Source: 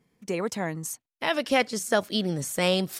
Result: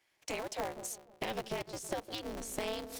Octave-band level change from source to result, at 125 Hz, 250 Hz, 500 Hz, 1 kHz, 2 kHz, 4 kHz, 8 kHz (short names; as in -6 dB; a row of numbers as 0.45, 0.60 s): -16.5, -15.0, -12.0, -10.5, -14.5, -13.0, -8.5 dB